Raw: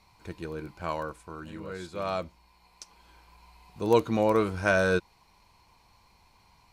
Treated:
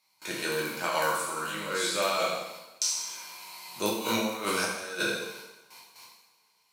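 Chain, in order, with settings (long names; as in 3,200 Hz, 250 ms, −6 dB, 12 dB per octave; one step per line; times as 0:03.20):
peak hold with a decay on every bin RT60 0.56 s
high-pass filter 120 Hz 24 dB per octave
noise gate with hold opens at −49 dBFS
spectral tilt +4 dB per octave
compressor whose output falls as the input rises −32 dBFS, ratio −0.5
coupled-rooms reverb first 0.97 s, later 2.6 s, from −26 dB, DRR −2 dB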